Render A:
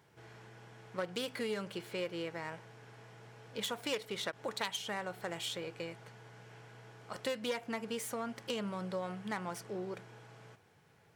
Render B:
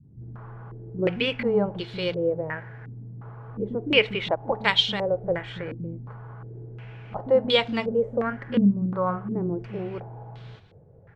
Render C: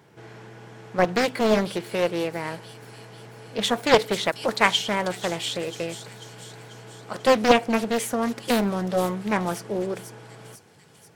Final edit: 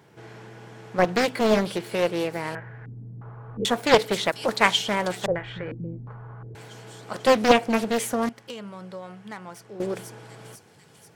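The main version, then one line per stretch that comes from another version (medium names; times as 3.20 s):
C
2.55–3.65 s: from B
5.26–6.55 s: from B
8.29–9.80 s: from A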